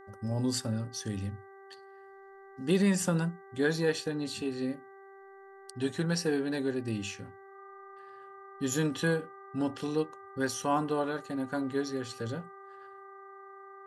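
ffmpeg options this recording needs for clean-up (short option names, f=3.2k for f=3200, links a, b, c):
-af "bandreject=f=390.3:t=h:w=4,bandreject=f=780.6:t=h:w=4,bandreject=f=1.1709k:t=h:w=4,bandreject=f=1.5612k:t=h:w=4,bandreject=f=1.9515k:t=h:w=4,bandreject=f=1.2k:w=30"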